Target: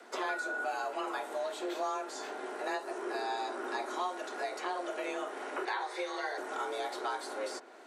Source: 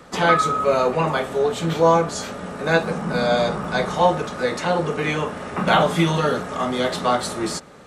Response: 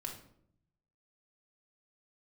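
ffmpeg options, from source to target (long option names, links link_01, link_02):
-filter_complex "[0:a]asettb=1/sr,asplit=3[link_01][link_02][link_03];[link_01]atrim=end=5.654[link_04];[link_02]atrim=start=5.65:end=6.38,asetpts=PTS-STARTPTS,afade=type=in:duration=0.004:curve=qsin,afade=type=out:start_time=0.726:duration=0.004:curve=qsin,highpass=270,equalizer=frequency=450:width_type=q:width=4:gain=-8,equalizer=frequency=1100:width_type=q:width=4:gain=-6,equalizer=frequency=1800:width_type=q:width=4:gain=8,equalizer=frequency=2900:width_type=q:width=4:gain=-7,equalizer=frequency=4100:width_type=q:width=4:gain=7,equalizer=frequency=7100:width_type=q:width=4:gain=-8,lowpass=frequency=8500:width=0.5412,lowpass=frequency=8500:width=1.3066[link_05];[link_03]atrim=start=6.376[link_06];[link_04][link_05]acrossfade=duration=0.004:curve1=hsin:curve2=qsin[link_07];[link_07][link_06]acrossfade=duration=0.004:curve1=qsin:curve2=hsin,acrossover=split=1500|5500[link_08][link_09][link_10];[link_08]acompressor=threshold=-26dB:ratio=4[link_11];[link_09]acompressor=threshold=-39dB:ratio=4[link_12];[link_10]acompressor=threshold=-45dB:ratio=4[link_13];[link_11][link_12][link_13]amix=inputs=3:normalize=0,afreqshift=190,volume=-8.5dB"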